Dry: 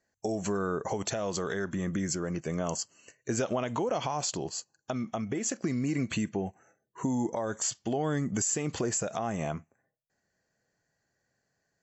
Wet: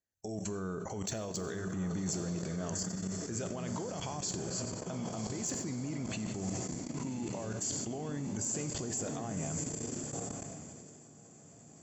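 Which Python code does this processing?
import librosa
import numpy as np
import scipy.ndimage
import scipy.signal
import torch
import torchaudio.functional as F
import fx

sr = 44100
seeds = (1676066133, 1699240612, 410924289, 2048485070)

p1 = fx.comb_fb(x, sr, f0_hz=58.0, decay_s=0.8, harmonics='all', damping=0.0, mix_pct=30)
p2 = p1 + fx.echo_diffused(p1, sr, ms=1118, feedback_pct=61, wet_db=-6.5, dry=0)
p3 = fx.level_steps(p2, sr, step_db=19)
p4 = fx.high_shelf(p3, sr, hz=4200.0, db=11.0)
p5 = (np.mod(10.0 ** (20.0 / 20.0) * p4 + 1.0, 2.0) - 1.0) / 10.0 ** (20.0 / 20.0)
p6 = p4 + (p5 * librosa.db_to_amplitude(-11.5))
p7 = fx.low_shelf(p6, sr, hz=270.0, db=10.5)
p8 = fx.rev_plate(p7, sr, seeds[0], rt60_s=1.2, hf_ratio=0.95, predelay_ms=0, drr_db=11.5)
p9 = fx.sustainer(p8, sr, db_per_s=21.0)
y = p9 * librosa.db_to_amplitude(-7.5)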